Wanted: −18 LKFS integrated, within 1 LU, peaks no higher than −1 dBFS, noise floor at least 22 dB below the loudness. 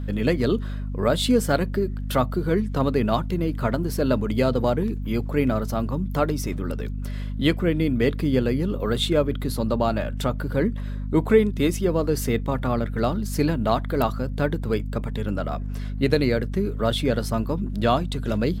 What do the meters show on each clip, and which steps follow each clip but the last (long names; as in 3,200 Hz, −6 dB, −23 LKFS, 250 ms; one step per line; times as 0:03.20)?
mains hum 50 Hz; hum harmonics up to 250 Hz; level of the hum −26 dBFS; integrated loudness −24.0 LKFS; sample peak −5.5 dBFS; target loudness −18.0 LKFS
→ mains-hum notches 50/100/150/200/250 Hz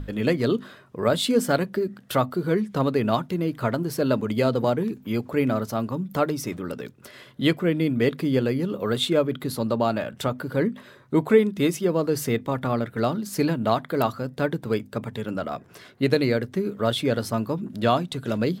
mains hum none found; integrated loudness −25.0 LKFS; sample peak −6.0 dBFS; target loudness −18.0 LKFS
→ level +7 dB
brickwall limiter −1 dBFS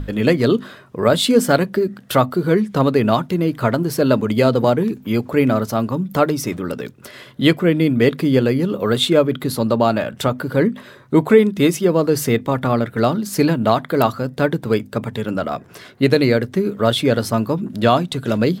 integrated loudness −18.0 LKFS; sample peak −1.0 dBFS; background noise floor −44 dBFS